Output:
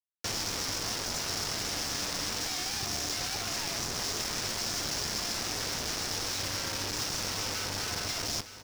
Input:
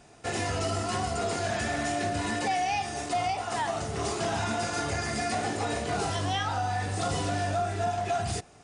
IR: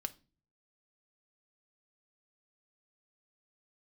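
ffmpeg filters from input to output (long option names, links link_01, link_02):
-filter_complex "[0:a]lowshelf=frequency=460:gain=8.5,bandreject=frequency=63.73:width_type=h:width=4,bandreject=frequency=127.46:width_type=h:width=4,bandreject=frequency=191.19:width_type=h:width=4,bandreject=frequency=254.92:width_type=h:width=4,bandreject=frequency=318.65:width_type=h:width=4,bandreject=frequency=382.38:width_type=h:width=4,aresample=16000,aeval=exprs='0.0422*(abs(mod(val(0)/0.0422+3,4)-2)-1)':channel_layout=same,aresample=44100,acrossover=split=110|460|1400[link_01][link_02][link_03][link_04];[link_01]acompressor=threshold=-45dB:ratio=4[link_05];[link_02]acompressor=threshold=-43dB:ratio=4[link_06];[link_03]acompressor=threshold=-46dB:ratio=4[link_07];[link_04]acompressor=threshold=-42dB:ratio=4[link_08];[link_05][link_06][link_07][link_08]amix=inputs=4:normalize=0,acrusher=bits=5:mix=0:aa=0.000001,equalizer=frequency=5400:width=2:gain=13,aecho=1:1:913:0.224"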